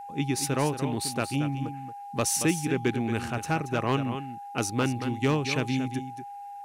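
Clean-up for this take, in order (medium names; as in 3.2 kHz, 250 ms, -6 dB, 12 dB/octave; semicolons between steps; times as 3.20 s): clip repair -16 dBFS; band-stop 810 Hz, Q 30; expander -33 dBFS, range -21 dB; inverse comb 228 ms -10 dB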